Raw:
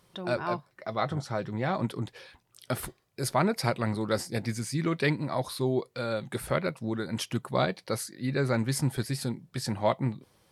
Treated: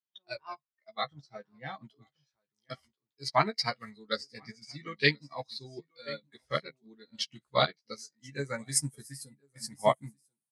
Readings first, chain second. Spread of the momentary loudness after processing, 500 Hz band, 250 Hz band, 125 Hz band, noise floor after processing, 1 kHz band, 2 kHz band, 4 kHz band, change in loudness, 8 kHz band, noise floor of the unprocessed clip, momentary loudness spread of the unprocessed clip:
19 LU, −4.5 dB, −12.0 dB, −11.0 dB, below −85 dBFS, −1.5 dB, 0.0 dB, +3.0 dB, −2.5 dB, +1.0 dB, −69 dBFS, 8 LU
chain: low-shelf EQ 140 Hz +6.5 dB
single-tap delay 1,035 ms −10.5 dB
low-pass filter sweep 4,600 Hz → 9,800 Hz, 0:07.61–0:08.92
high-pass filter 82 Hz 12 dB per octave
low-shelf EQ 450 Hz −12 dB
double-tracking delay 14 ms −5 dB
noise reduction from a noise print of the clip's start 15 dB
expander for the loud parts 2.5 to 1, over −43 dBFS
level +5 dB

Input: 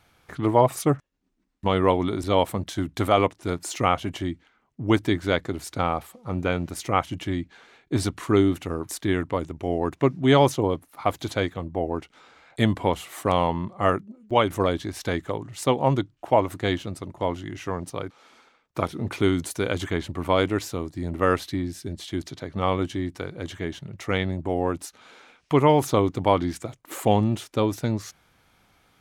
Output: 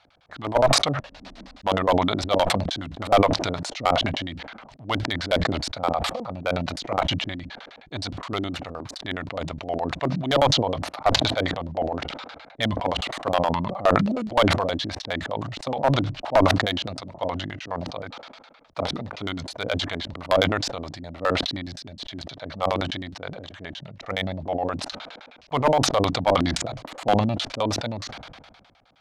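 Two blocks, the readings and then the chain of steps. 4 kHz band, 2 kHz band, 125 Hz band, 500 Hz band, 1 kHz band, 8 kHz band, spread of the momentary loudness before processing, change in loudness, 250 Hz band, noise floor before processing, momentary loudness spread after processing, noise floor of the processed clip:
+7.5 dB, +3.0 dB, −2.0 dB, −0.5 dB, +1.0 dB, +2.5 dB, 12 LU, +0.5 dB, −2.5 dB, −66 dBFS, 16 LU, −52 dBFS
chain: low shelf with overshoot 470 Hz −9.5 dB, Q 3
auto-filter low-pass square 9.6 Hz 280–4,200 Hz
asymmetric clip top −14 dBFS
level that may fall only so fast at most 36 dB per second
level −1 dB

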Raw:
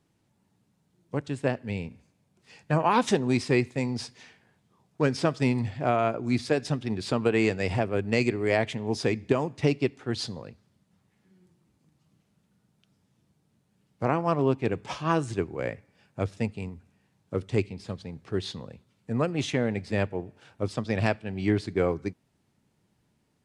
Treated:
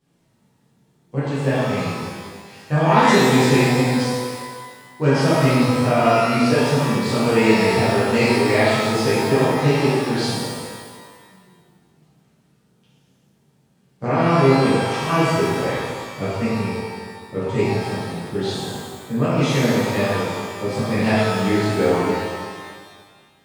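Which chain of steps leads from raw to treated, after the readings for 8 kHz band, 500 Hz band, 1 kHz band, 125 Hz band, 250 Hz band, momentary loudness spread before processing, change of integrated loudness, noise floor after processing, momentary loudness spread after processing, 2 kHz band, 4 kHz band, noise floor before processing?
+12.0 dB, +9.0 dB, +10.5 dB, +9.0 dB, +9.0 dB, 11 LU, +9.0 dB, −60 dBFS, 15 LU, +10.5 dB, +11.5 dB, −71 dBFS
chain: reverb with rising layers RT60 1.6 s, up +12 semitones, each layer −8 dB, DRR −12 dB
level −4 dB

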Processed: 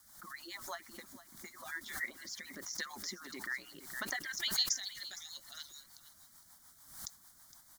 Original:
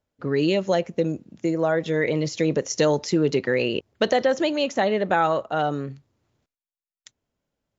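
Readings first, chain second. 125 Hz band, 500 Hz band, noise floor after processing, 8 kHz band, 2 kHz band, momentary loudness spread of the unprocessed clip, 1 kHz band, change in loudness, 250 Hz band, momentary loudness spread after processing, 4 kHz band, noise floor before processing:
−32.5 dB, −34.5 dB, −63 dBFS, can't be measured, −11.0 dB, 6 LU, −23.5 dB, −16.5 dB, −30.0 dB, 23 LU, −6.0 dB, below −85 dBFS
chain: harmonic-percussive split with one part muted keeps percussive
band-pass filter sweep 1,200 Hz → 5,000 Hz, 0:04.09–0:04.67
high-shelf EQ 2,300 Hz +9.5 dB
in parallel at 0 dB: downward compressor, threshold −47 dBFS, peak gain reduction 21.5 dB
on the sum: flat-topped bell 930 Hz −12 dB
background noise white −60 dBFS
phaser with its sweep stopped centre 1,100 Hz, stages 4
rotating-speaker cabinet horn 6.7 Hz
on a send: single-tap delay 462 ms −16 dB
on the sum: background raised ahead of every attack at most 81 dB per second
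level +4 dB

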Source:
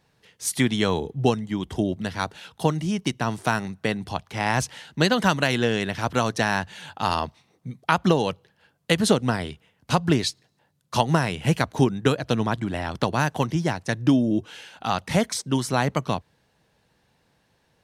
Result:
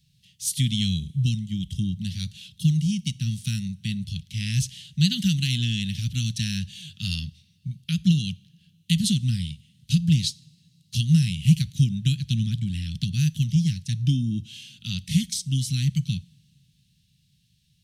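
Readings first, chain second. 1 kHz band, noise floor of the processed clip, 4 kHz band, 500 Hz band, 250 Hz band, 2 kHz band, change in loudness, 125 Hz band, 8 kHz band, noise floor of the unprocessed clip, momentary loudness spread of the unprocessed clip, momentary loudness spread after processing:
below −40 dB, −65 dBFS, +1.0 dB, below −30 dB, −1.5 dB, −11.5 dB, −1.0 dB, +5.0 dB, 0.0 dB, −67 dBFS, 9 LU, 11 LU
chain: Chebyshev band-stop filter 170–3,100 Hz, order 3
harmonic and percussive parts rebalanced harmonic +6 dB
coupled-rooms reverb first 0.48 s, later 3.2 s, from −18 dB, DRR 20 dB

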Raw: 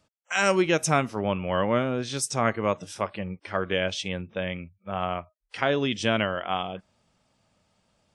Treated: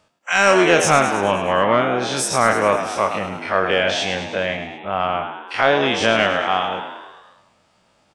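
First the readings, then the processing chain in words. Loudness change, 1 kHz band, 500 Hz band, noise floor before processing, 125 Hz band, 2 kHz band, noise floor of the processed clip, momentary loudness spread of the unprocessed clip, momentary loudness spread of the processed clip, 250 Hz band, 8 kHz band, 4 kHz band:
+8.5 dB, +10.5 dB, +8.5 dB, −73 dBFS, +2.0 dB, +10.5 dB, −61 dBFS, 11 LU, 11 LU, +4.5 dB, +8.0 dB, +9.0 dB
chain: every bin's largest magnitude spread in time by 60 ms
high-shelf EQ 7,600 Hz +8.5 dB
echo with shifted repeats 105 ms, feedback 60%, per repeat +68 Hz, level −9 dB
mid-hump overdrive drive 8 dB, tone 2,000 Hz, clips at −4 dBFS
level +4.5 dB

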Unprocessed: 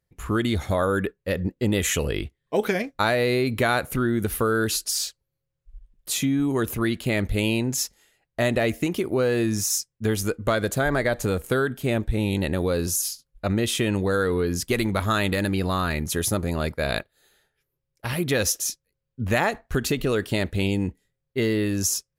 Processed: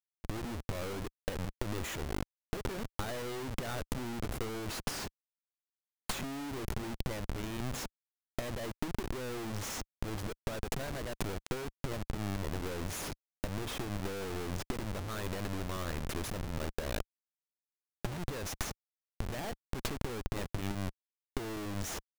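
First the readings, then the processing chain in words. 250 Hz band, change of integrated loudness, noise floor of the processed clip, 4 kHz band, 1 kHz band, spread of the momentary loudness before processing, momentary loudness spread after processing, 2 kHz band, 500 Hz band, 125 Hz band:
−15.0 dB, −14.5 dB, below −85 dBFS, −13.0 dB, −13.0 dB, 5 LU, 4 LU, −16.0 dB, −16.0 dB, −12.5 dB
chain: comparator with hysteresis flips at −25.5 dBFS
power curve on the samples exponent 3
level −2.5 dB

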